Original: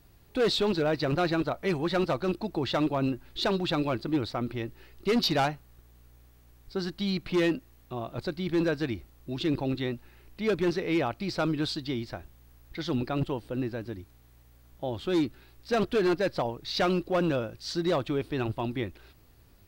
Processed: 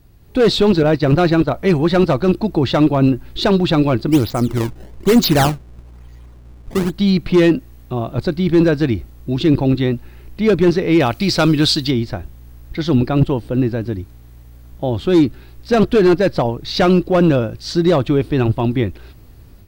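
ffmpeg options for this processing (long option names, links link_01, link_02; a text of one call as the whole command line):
ffmpeg -i in.wav -filter_complex "[0:a]asettb=1/sr,asplit=3[link_01][link_02][link_03];[link_01]atrim=end=0.834[link_04];[link_02]atrim=start=0.83:end=1.5,asetpts=PTS-STARTPTS,afade=type=in:duration=0.004:curve=qsin,afade=type=out:start_time=0.666:duration=0.004:curve=qsin,agate=range=-33dB:threshold=-31dB:ratio=3:release=100:detection=peak[link_05];[link_03]atrim=start=1.496[link_06];[link_04][link_05]acrossfade=duration=0.004:curve1=hsin:curve2=qsin[link_07];[link_07][link_06]acrossfade=duration=0.004:curve1=qsin:curve2=hsin,asplit=3[link_08][link_09][link_10];[link_08]afade=type=out:start_time=4.11:duration=0.02[link_11];[link_09]acrusher=samples=22:mix=1:aa=0.000001:lfo=1:lforange=35.2:lforate=1.1,afade=type=in:start_time=4.11:duration=0.02,afade=type=out:start_time=6.92:duration=0.02[link_12];[link_10]afade=type=in:start_time=6.92:duration=0.02[link_13];[link_11][link_12][link_13]amix=inputs=3:normalize=0,asettb=1/sr,asplit=3[link_14][link_15][link_16];[link_14]atrim=end=11.004[link_17];[link_15]atrim=start=11:end=11.91,asetpts=PTS-STARTPTS,afade=type=in:duration=0.004:curve=qsin,afade=type=out:start_time=0.906:duration=0.004:curve=qsin,highshelf=frequency=2100:gain=11.5[link_18];[link_16]atrim=start=11.906[link_19];[link_17][link_18]acrossfade=duration=0.004:curve1=hsin:curve2=qsin[link_20];[link_20][link_19]acrossfade=duration=0.004:curve1=qsin:curve2=hsin,lowshelf=frequency=390:gain=8.5,dynaudnorm=framelen=200:gausssize=3:maxgain=7dB,volume=2dB" out.wav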